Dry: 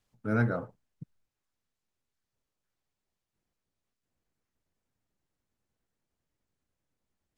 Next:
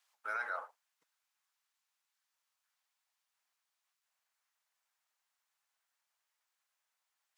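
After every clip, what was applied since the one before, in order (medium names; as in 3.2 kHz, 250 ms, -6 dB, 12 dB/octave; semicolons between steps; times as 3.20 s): high-pass 860 Hz 24 dB/octave; peak limiter -33.5 dBFS, peak gain reduction 10.5 dB; trim +5 dB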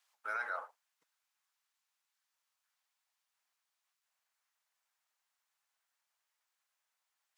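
no audible change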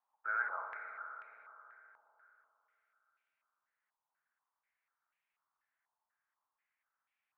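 on a send at -1.5 dB: reverberation RT60 3.5 s, pre-delay 51 ms; on the sum: step-sequenced low-pass 4.1 Hz 920–2400 Hz; trim -8 dB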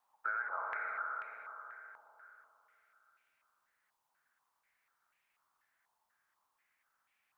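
compression 12:1, threshold -42 dBFS, peak gain reduction 13 dB; trim +8.5 dB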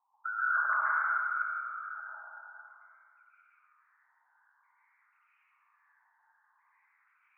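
resonances exaggerated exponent 3; plate-style reverb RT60 1.7 s, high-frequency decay 0.65×, pre-delay 115 ms, DRR -9.5 dB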